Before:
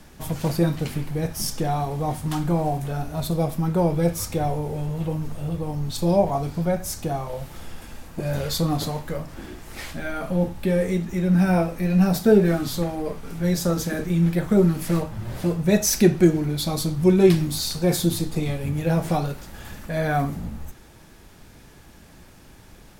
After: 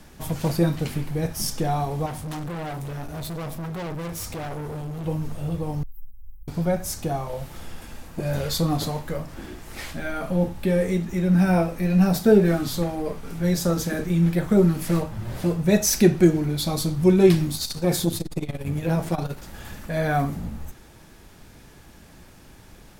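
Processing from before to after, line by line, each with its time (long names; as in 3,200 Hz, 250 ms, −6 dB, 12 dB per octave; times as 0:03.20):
0:02.06–0:05.06: gain into a clipping stage and back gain 30 dB
0:05.83–0:06.48: inverse Chebyshev band-stop filter 260–4,900 Hz, stop band 80 dB
0:17.50–0:19.43: saturating transformer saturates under 230 Hz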